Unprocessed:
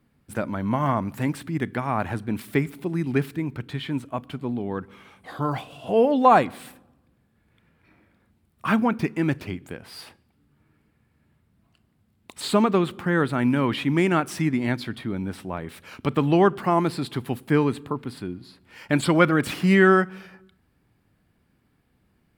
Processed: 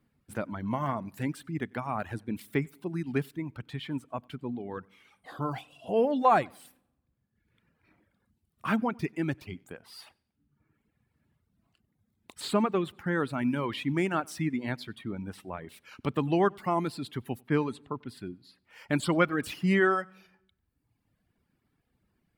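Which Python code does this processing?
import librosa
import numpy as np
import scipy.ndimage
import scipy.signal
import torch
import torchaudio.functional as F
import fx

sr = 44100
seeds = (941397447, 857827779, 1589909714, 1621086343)

y = fx.env_lowpass(x, sr, base_hz=2900.0, full_db=-16.5, at=(17.41, 18.09))
y = fx.echo_feedback(y, sr, ms=94, feedback_pct=33, wet_db=-18)
y = fx.dereverb_blind(y, sr, rt60_s=1.1)
y = y * 10.0 ** (-6.0 / 20.0)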